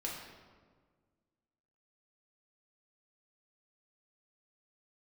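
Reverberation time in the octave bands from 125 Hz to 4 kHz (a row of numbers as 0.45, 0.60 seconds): 2.0, 2.1, 1.7, 1.5, 1.2, 0.95 seconds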